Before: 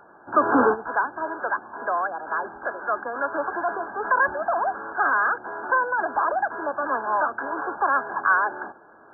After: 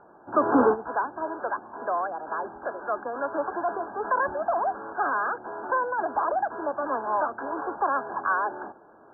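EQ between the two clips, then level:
low-pass filter 1,000 Hz 12 dB per octave
0.0 dB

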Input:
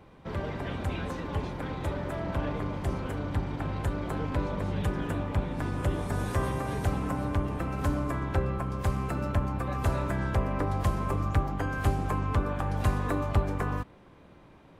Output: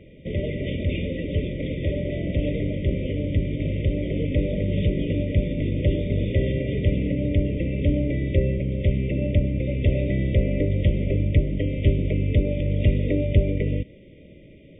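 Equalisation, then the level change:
linear-phase brick-wall band-stop 640–1,900 Hz
linear-phase brick-wall low-pass 3,700 Hz
+7.5 dB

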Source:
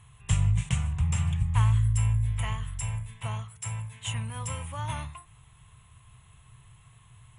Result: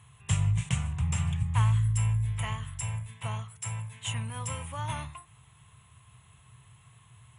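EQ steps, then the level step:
high-pass filter 83 Hz
0.0 dB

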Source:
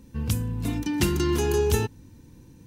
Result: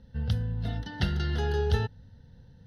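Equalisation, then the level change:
low-pass filter 4,100 Hz 12 dB per octave
phaser with its sweep stopped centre 1,600 Hz, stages 8
0.0 dB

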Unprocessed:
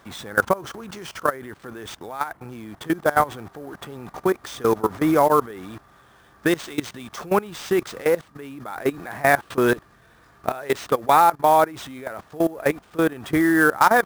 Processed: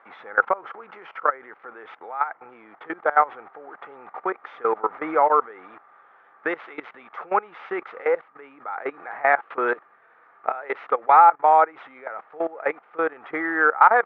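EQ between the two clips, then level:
loudspeaker in its box 480–2,400 Hz, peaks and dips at 480 Hz +6 dB, 820 Hz +8 dB, 1,300 Hz +9 dB, 2,100 Hz +6 dB
−5.0 dB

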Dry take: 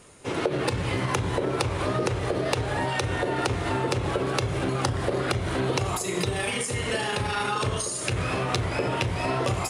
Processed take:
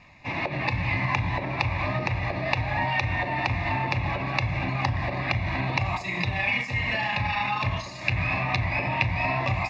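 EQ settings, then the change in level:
low-pass with resonance 2,800 Hz, resonance Q 2.7
notch filter 520 Hz, Q 12
phaser with its sweep stopped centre 2,100 Hz, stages 8
+2.0 dB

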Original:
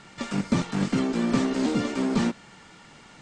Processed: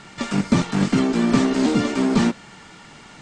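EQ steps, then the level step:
notch filter 520 Hz, Q 17
+6.0 dB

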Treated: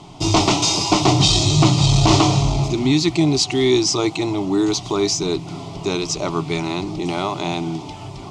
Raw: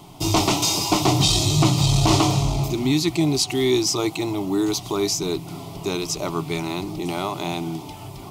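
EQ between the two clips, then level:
low-pass filter 7,400 Hz 24 dB per octave
+3.5 dB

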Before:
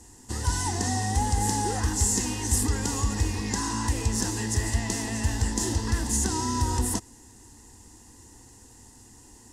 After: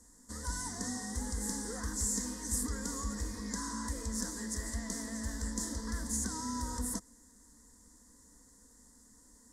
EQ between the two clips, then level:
phaser with its sweep stopped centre 540 Hz, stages 8
−7.0 dB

